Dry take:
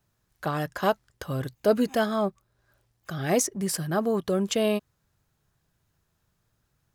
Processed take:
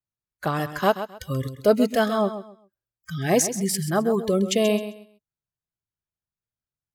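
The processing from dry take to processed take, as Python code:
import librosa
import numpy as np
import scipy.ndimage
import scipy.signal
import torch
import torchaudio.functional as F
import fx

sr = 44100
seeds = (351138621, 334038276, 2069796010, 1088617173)

p1 = fx.noise_reduce_blind(x, sr, reduce_db=28)
p2 = p1 + fx.echo_feedback(p1, sr, ms=132, feedback_pct=24, wet_db=-11.5, dry=0)
y = p2 * 10.0 ** (3.5 / 20.0)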